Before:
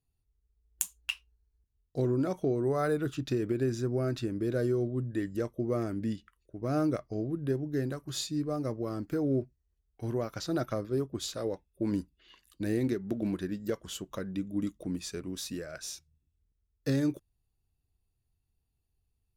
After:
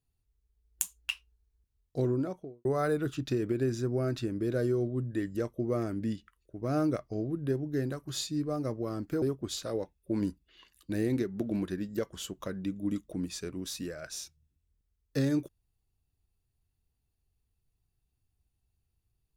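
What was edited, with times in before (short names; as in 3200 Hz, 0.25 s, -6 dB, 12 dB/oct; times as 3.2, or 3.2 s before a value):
2.02–2.65 studio fade out
9.22–10.93 cut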